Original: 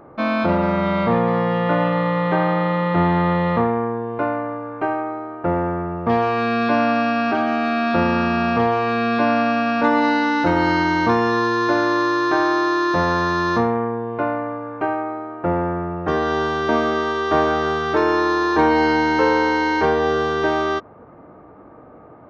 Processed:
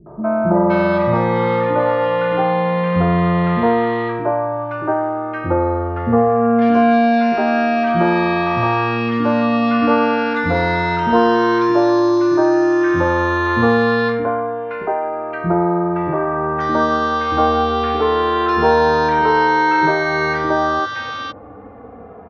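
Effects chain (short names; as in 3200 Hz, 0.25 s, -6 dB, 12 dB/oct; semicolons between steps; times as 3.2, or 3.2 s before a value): high shelf 4900 Hz -10.5 dB; in parallel at -1 dB: compressor, threshold -28 dBFS, peak gain reduction 15 dB; on the sum: three bands offset in time lows, mids, highs 60/520 ms, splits 280/1300 Hz; endless flanger 2.6 ms -0.26 Hz; gain +6 dB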